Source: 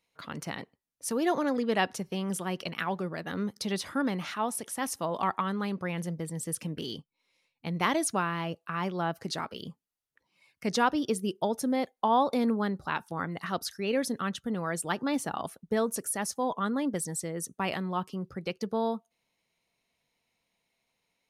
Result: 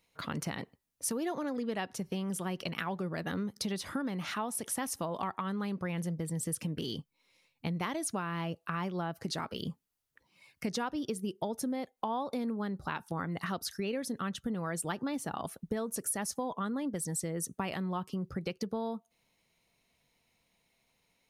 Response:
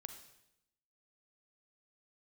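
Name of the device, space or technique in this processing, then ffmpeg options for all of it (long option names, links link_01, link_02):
ASMR close-microphone chain: -af "lowshelf=frequency=170:gain=7,acompressor=threshold=-36dB:ratio=6,highshelf=frequency=10000:gain=4,volume=3.5dB"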